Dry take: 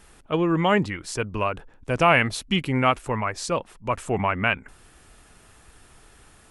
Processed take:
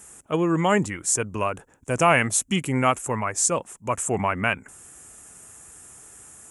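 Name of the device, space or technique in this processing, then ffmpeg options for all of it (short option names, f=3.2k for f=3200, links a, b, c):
budget condenser microphone: -af "highpass=83,highshelf=f=5.6k:t=q:w=3:g=9.5"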